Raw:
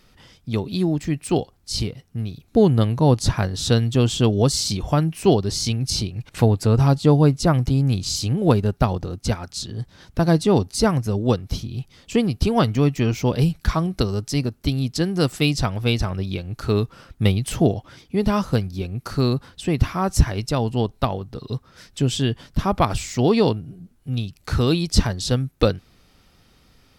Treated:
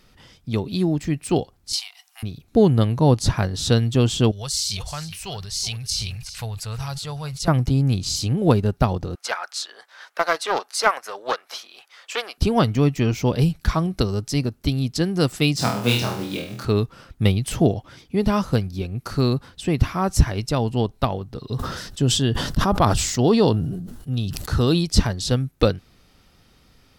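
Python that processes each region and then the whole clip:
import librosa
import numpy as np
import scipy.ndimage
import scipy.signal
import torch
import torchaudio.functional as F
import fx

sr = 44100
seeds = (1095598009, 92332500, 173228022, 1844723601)

y = fx.chain(x, sr, fx.cheby_ripple_highpass(hz=710.0, ripple_db=3),
    fx.high_shelf(hz=4200.0, db=7.5),
    fx.band_squash(depth_pct=100), at=(1.73, 2.23))
y = fx.chain(y, sr, fx.tone_stack(knobs='10-0-10'),
    fx.echo_single(ms=372, db=-17.0),
    fx.sustainer(db_per_s=35.0), at=(4.31, 7.48))
y = fx.chain(y, sr, fx.highpass(hz=580.0, slope=24),
    fx.peak_eq(hz=1500.0, db=10.0, octaves=1.4),
    fx.doppler_dist(depth_ms=0.19), at=(9.15, 12.38))
y = fx.chain(y, sr, fx.block_float(bits=5),
    fx.highpass(hz=130.0, slope=24),
    fx.room_flutter(wall_m=4.2, rt60_s=0.51), at=(15.56, 16.65))
y = fx.chain(y, sr, fx.peak_eq(hz=2300.0, db=-9.5, octaves=0.28),
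    fx.sustainer(db_per_s=44.0), at=(21.52, 24.84))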